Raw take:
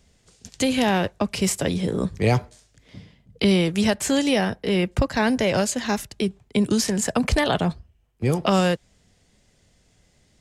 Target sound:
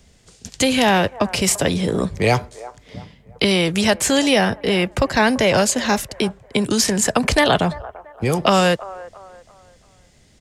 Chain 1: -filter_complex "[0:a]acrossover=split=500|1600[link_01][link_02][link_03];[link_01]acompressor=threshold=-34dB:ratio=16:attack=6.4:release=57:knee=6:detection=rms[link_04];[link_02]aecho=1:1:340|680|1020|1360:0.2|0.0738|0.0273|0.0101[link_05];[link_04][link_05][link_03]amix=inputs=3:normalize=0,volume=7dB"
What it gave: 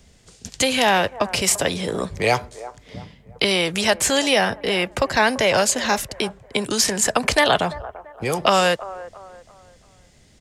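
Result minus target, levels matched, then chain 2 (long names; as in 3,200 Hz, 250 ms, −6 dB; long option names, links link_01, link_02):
downward compressor: peak gain reduction +9 dB
-filter_complex "[0:a]acrossover=split=500|1600[link_01][link_02][link_03];[link_01]acompressor=threshold=-24.5dB:ratio=16:attack=6.4:release=57:knee=6:detection=rms[link_04];[link_02]aecho=1:1:340|680|1020|1360:0.2|0.0738|0.0273|0.0101[link_05];[link_04][link_05][link_03]amix=inputs=3:normalize=0,volume=7dB"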